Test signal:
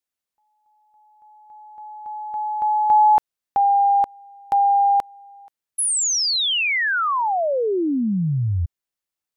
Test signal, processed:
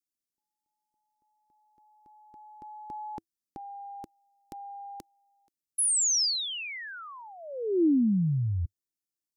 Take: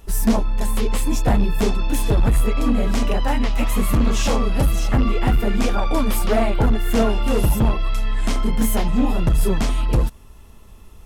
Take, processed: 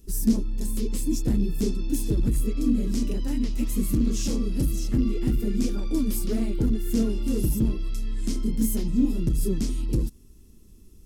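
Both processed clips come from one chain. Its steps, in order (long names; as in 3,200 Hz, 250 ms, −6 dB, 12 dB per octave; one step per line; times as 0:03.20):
drawn EQ curve 100 Hz 0 dB, 330 Hz +7 dB, 730 Hz −19 dB, 3,400 Hz −6 dB, 5,100 Hz +3 dB
level −7.5 dB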